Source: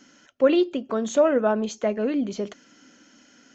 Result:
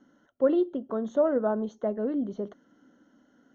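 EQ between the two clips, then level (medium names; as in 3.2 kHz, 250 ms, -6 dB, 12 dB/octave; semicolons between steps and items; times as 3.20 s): boxcar filter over 18 samples; -4.0 dB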